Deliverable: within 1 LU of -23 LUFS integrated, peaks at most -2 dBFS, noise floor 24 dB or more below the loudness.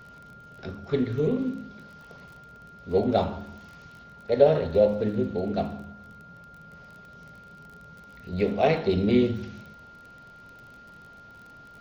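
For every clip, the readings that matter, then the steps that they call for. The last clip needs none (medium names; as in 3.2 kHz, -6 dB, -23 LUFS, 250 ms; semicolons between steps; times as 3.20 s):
tick rate 28 per s; steady tone 1.4 kHz; tone level -47 dBFS; loudness -25.0 LUFS; peak level -5.5 dBFS; loudness target -23.0 LUFS
-> de-click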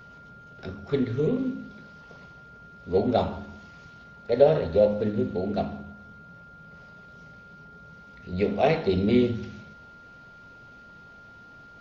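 tick rate 0 per s; steady tone 1.4 kHz; tone level -47 dBFS
-> band-stop 1.4 kHz, Q 30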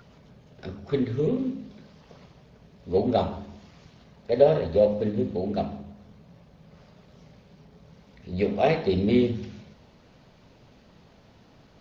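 steady tone not found; loudness -25.0 LUFS; peak level -5.5 dBFS; loudness target -23.0 LUFS
-> trim +2 dB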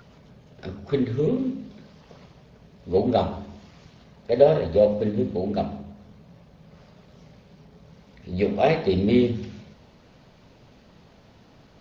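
loudness -23.0 LUFS; peak level -3.5 dBFS; noise floor -54 dBFS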